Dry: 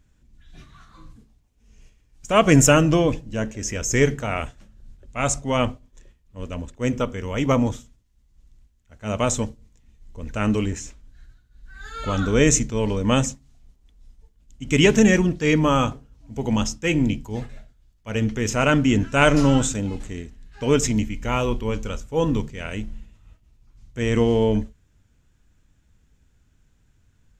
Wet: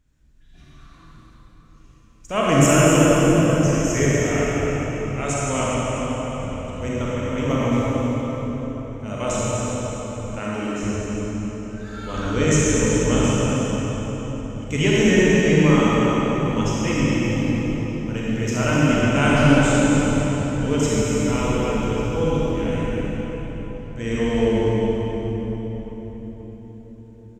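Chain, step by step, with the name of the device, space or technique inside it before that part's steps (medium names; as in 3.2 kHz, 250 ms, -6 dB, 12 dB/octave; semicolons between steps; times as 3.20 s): cave (delay 247 ms -8.5 dB; reverberation RT60 4.8 s, pre-delay 34 ms, DRR -7.5 dB); 10.39–10.83 s: high-pass 280 Hz 6 dB/octave; trim -7 dB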